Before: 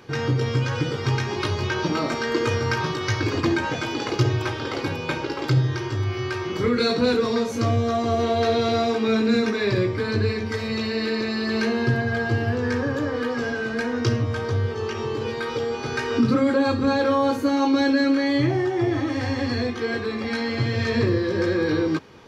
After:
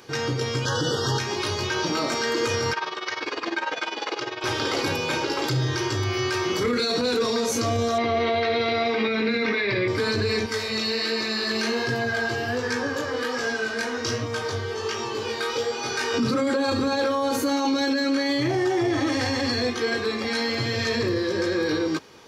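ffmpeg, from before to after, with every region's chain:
-filter_complex "[0:a]asettb=1/sr,asplit=3[a][b][c];[a]atrim=end=0.654[d];[b]atrim=start=0.65:end=1.19,asetpts=PTS-STARTPTS,afade=t=in:d=0.004:c=qsin,afade=t=out:st=0.536:d=0.004:c=qsin,asuperstop=centerf=2300:order=20:qfactor=2.3,acontrast=28[e];[c]atrim=start=1.186[f];[d][e]acrossfade=d=0.004:c1=hsin:c2=qsin[g];[g][f]acrossfade=d=0.004:c1=qsin:c2=hsin,asettb=1/sr,asplit=3[h][i][j];[h]atrim=end=2.734[k];[i]atrim=start=2.73:end=4.44,asetpts=PTS-STARTPTS,afade=t=in:d=0.004:c=qsin,afade=t=out:st=1.706:d=0.004:c=qsin,highpass=500,lowpass=3.4k,tremolo=f=20:d=0.788[l];[j]atrim=start=4.436[m];[k][l]acrossfade=d=0.004:c1=hsin:c2=qsin[n];[n][m]acrossfade=d=0.004:c1=qsin:c2=hsin,asettb=1/sr,asplit=3[o][p][q];[o]atrim=end=7.984[r];[p]atrim=start=7.98:end=9.88,asetpts=PTS-STARTPTS,afade=t=in:d=0.004:c=qsin,afade=t=out:st=1.896:d=0.004:c=qsin,lowpass=f=4.1k:w=0.5412,lowpass=f=4.1k:w=1.3066,equalizer=f=2.1k:t=o:w=0.34:g=12.5[s];[q]atrim=start=9.876[t];[r][s]acrossfade=d=0.004:c1=hsin:c2=qsin[u];[u][t]acrossfade=d=0.004:c1=qsin:c2=hsin,asettb=1/sr,asplit=3[v][w][x];[v]atrim=end=10.464[y];[w]atrim=start=10.46:end=16.14,asetpts=PTS-STARTPTS,afade=t=in:d=0.004:c=qsin,afade=t=out:st=5.676:d=0.004:c=qsin,lowshelf=f=400:g=-5.5,flanger=delay=17:depth=6.3:speed=1.3[z];[x]atrim=start=16.136[aa];[y][z]acrossfade=d=0.004:c1=hsin:c2=qsin[ab];[ab][aa]acrossfade=d=0.004:c1=qsin:c2=hsin,bass=f=250:g=-7,treble=f=4k:g=9,dynaudnorm=f=430:g=13:m=5dB,alimiter=limit=-16dB:level=0:latency=1:release=14"

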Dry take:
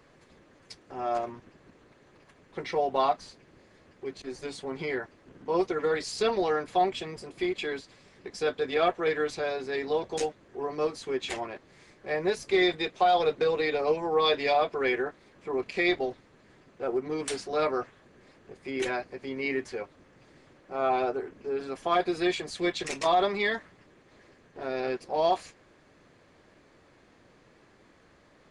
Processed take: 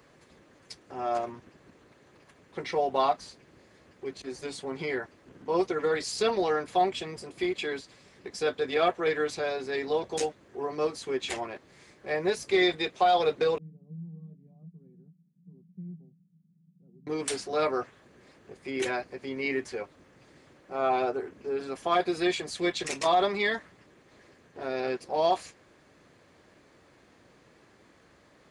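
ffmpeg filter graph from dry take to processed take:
-filter_complex "[0:a]asettb=1/sr,asplit=3[a][b][c];[a]atrim=end=13.584[d];[b]atrim=start=13.58:end=17.07,asetpts=PTS-STARTPTS,afade=t=in:d=0.004:c=qsin,afade=t=out:st=3.486:d=0.004:c=qsin,acontrast=83,asuperpass=centerf=170:order=4:qfactor=5.8[e];[c]atrim=start=17.066[f];[d][e]acrossfade=d=0.004:c1=hsin:c2=qsin[g];[g][f]acrossfade=d=0.004:c1=qsin:c2=hsin,highpass=47,highshelf=f=7.9k:g=6.5"

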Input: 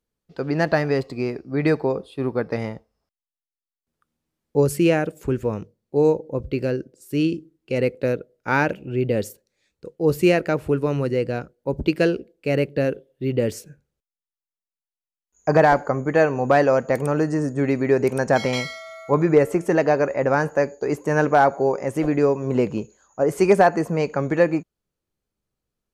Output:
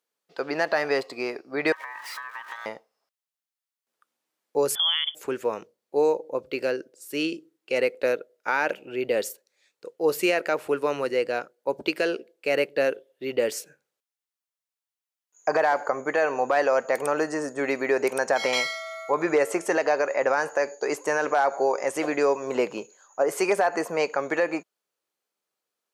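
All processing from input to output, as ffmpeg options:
-filter_complex "[0:a]asettb=1/sr,asplit=3[a][b][c];[a]atrim=end=1.724[d];[b]atrim=start=1.72:end=2.66,asetpts=PTS-STARTPTS,afade=t=in:d=0.004:c=qsin,afade=t=out:st=0.936:d=0.004:c=qsin,aeval=exprs='val(0)+0.5*0.0188*sgn(val(0))':c=same,aeval=exprs='val(0)*sin(2*PI*1400*n/s)':c=same,acompressor=threshold=-36dB:ratio=16:attack=3.2:release=140:knee=1:detection=peak[e];[c]atrim=start=2.656[f];[d][e]acrossfade=d=0.004:c1=hsin:c2=qsin[g];[g][f]acrossfade=d=0.004:c1=qsin:c2=hsin,asettb=1/sr,asplit=3[h][i][j];[h]atrim=end=4.754[k];[i]atrim=start=4.75:end=5.15,asetpts=PTS-STARTPTS,afade=t=in:d=0.004:c=qsin,afade=t=out:st=0.396:d=0.004:c=qsin,lowpass=f=3.1k:t=q:w=0.5098,lowpass=f=3.1k:t=q:w=0.6013,lowpass=f=3.1k:t=q:w=0.9,lowpass=f=3.1k:t=q:w=2.563,afreqshift=-3600,highpass=f=380:p=1,acompressor=threshold=-27dB:ratio=3:attack=3.2:release=140:knee=1:detection=peak[l];[j]atrim=start=5.146[m];[k][l]acrossfade=d=0.004:c1=hsin:c2=qsin[n];[n][m]acrossfade=d=0.004:c1=qsin:c2=hsin,asettb=1/sr,asplit=3[o][p][q];[o]atrim=end=19.284[r];[p]atrim=start=19.28:end=22.57,asetpts=PTS-STARTPTS,afade=t=in:d=0.004:c=qsin,afade=t=out:st=3.286:d=0.004:c=qsin,lowpass=9.6k,highshelf=f=4.7k:g=6[s];[q]atrim=start=22.566[t];[r][s]acrossfade=d=0.004:c1=hsin:c2=qsin[u];[u][t]acrossfade=d=0.004:c1=qsin:c2=hsin,highpass=580,alimiter=limit=-16dB:level=0:latency=1:release=89,volume=3.5dB"

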